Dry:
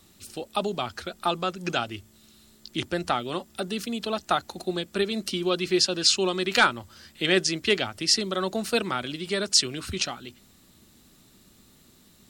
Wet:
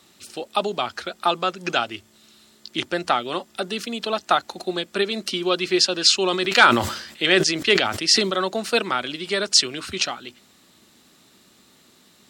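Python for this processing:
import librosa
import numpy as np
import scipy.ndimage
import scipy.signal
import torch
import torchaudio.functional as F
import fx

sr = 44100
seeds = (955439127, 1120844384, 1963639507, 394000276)

y = fx.highpass(x, sr, hz=440.0, slope=6)
y = fx.high_shelf(y, sr, hz=9100.0, db=-11.5)
y = fx.sustainer(y, sr, db_per_s=68.0, at=(6.21, 8.45))
y = y * 10.0 ** (6.5 / 20.0)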